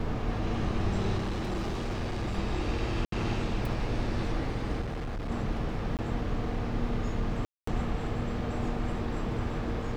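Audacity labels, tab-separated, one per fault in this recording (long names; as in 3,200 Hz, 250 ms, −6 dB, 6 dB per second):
1.170000	2.370000	clipping −28 dBFS
3.050000	3.120000	drop-out 73 ms
4.820000	5.310000	clipping −31.5 dBFS
5.970000	5.990000	drop-out 18 ms
7.450000	7.670000	drop-out 224 ms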